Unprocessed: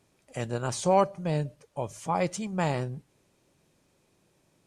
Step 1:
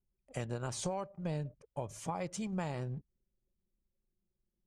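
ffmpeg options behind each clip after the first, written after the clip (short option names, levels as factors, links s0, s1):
-af "acompressor=threshold=0.0282:ratio=12,anlmdn=0.001,lowshelf=f=84:g=7.5,volume=0.708"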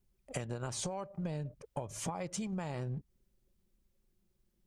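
-af "acompressor=threshold=0.00631:ratio=10,volume=2.82"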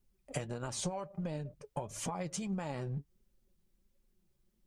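-af "flanger=delay=3.1:depth=4.2:regen=53:speed=1.5:shape=triangular,volume=1.68"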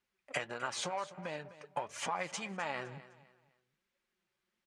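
-filter_complex "[0:a]asplit=2[s0][s1];[s1]aeval=exprs='sgn(val(0))*max(abs(val(0))-0.00422,0)':c=same,volume=0.473[s2];[s0][s2]amix=inputs=2:normalize=0,bandpass=f=1800:t=q:w=1.1:csg=0,aecho=1:1:255|510|765:0.15|0.0479|0.0153,volume=2.51"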